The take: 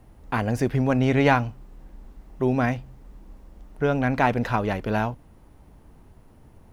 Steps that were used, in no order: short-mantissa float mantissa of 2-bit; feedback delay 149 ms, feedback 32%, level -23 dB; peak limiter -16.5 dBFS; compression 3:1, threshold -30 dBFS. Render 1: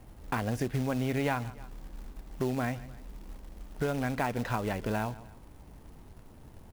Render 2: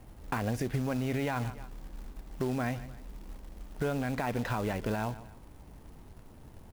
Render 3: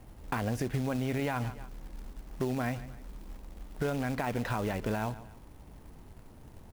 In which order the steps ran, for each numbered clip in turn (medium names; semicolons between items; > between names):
feedback delay > short-mantissa float > compression > peak limiter; feedback delay > peak limiter > short-mantissa float > compression; short-mantissa float > feedback delay > peak limiter > compression